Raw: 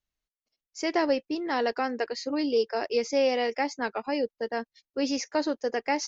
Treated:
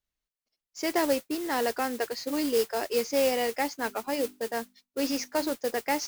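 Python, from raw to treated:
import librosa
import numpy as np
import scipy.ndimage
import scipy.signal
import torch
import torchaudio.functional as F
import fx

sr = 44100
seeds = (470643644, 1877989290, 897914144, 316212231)

y = fx.hum_notches(x, sr, base_hz=50, count=8, at=(3.8, 5.53))
y = fx.mod_noise(y, sr, seeds[0], snr_db=12)
y = y * 10.0 ** (-1.0 / 20.0)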